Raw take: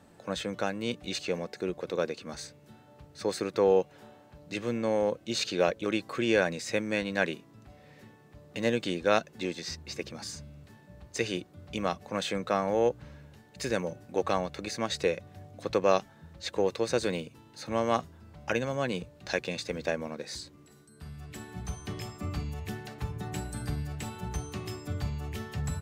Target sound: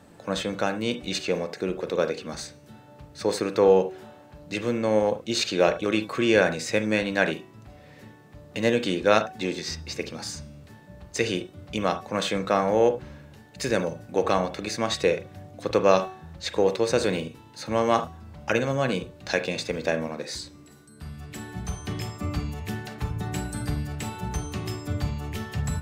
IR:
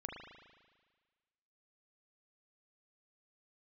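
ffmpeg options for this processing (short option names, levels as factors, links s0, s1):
-filter_complex "[0:a]bandreject=f=375.5:t=h:w=4,bandreject=f=751:t=h:w=4,bandreject=f=1126.5:t=h:w=4,bandreject=f=1502:t=h:w=4,bandreject=f=1877.5:t=h:w=4,bandreject=f=2253:t=h:w=4,bandreject=f=2628.5:t=h:w=4,bandreject=f=3004:t=h:w=4,bandreject=f=3379.5:t=h:w=4,bandreject=f=3755:t=h:w=4,bandreject=f=4130.5:t=h:w=4,bandreject=f=4506:t=h:w=4,bandreject=f=4881.5:t=h:w=4,bandreject=f=5257:t=h:w=4,bandreject=f=5632.5:t=h:w=4,bandreject=f=6008:t=h:w=4,bandreject=f=6383.5:t=h:w=4,bandreject=f=6759:t=h:w=4,bandreject=f=7134.5:t=h:w=4,bandreject=f=7510:t=h:w=4,bandreject=f=7885.5:t=h:w=4,bandreject=f=8261:t=h:w=4,bandreject=f=8636.5:t=h:w=4,bandreject=f=9012:t=h:w=4,bandreject=f=9387.5:t=h:w=4,bandreject=f=9763:t=h:w=4,bandreject=f=10138.5:t=h:w=4,bandreject=f=10514:t=h:w=4,bandreject=f=10889.5:t=h:w=4,asplit=2[s0][s1];[1:a]atrim=start_sample=2205,atrim=end_sample=3528[s2];[s1][s2]afir=irnorm=-1:irlink=0,volume=1.41[s3];[s0][s3]amix=inputs=2:normalize=0"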